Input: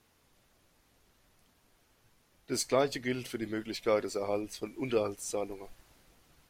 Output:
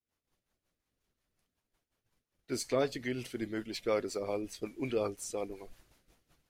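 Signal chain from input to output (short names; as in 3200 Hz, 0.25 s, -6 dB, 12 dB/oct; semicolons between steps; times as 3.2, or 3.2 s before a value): rotary speaker horn 5.5 Hz; expander -59 dBFS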